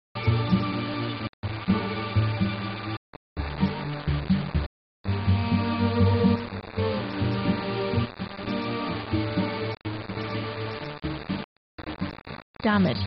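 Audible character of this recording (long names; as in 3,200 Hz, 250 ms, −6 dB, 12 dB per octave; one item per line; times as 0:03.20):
chopped level 0.59 Hz, depth 65%, duty 75%
a quantiser's noise floor 6 bits, dither none
MP2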